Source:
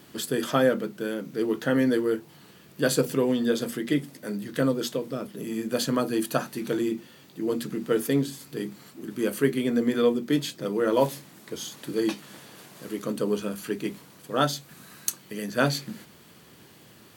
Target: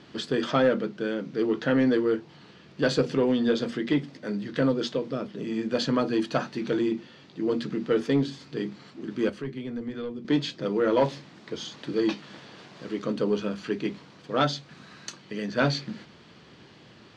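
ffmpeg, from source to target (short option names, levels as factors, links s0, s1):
-filter_complex "[0:a]asoftclip=type=tanh:threshold=0.188,asettb=1/sr,asplit=3[s0][s1][s2];[s0]atrim=end=9.294[s3];[s1]atrim=start=9.29:end=10.25,asetpts=PTS-STARTPTS,afade=t=in:d=0.004:c=qsin,afade=t=out:st=0.956:d=0.004:c=qsin,acrossover=split=130[s4][s5];[s5]acompressor=threshold=0.00562:ratio=2[s6];[s4][s6]amix=inputs=2:normalize=0[s7];[s2]atrim=start=10.246[s8];[s3][s7]acrossfade=d=0.004:c1=hsin:c2=qsin[s9];[s9][s8]acrossfade=d=0.004:c1=qsin:c2=hsin,lowpass=f=5200:w=0.5412,lowpass=f=5200:w=1.3066,volume=1.19"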